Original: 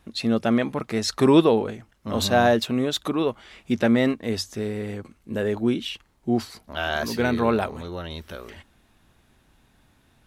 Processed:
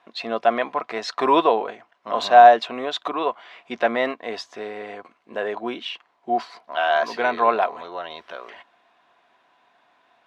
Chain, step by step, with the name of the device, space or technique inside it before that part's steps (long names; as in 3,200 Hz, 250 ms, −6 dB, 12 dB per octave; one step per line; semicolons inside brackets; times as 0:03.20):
tin-can telephone (band-pass filter 580–3,200 Hz; hollow resonant body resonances 710/1,000 Hz, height 12 dB, ringing for 50 ms)
level +3.5 dB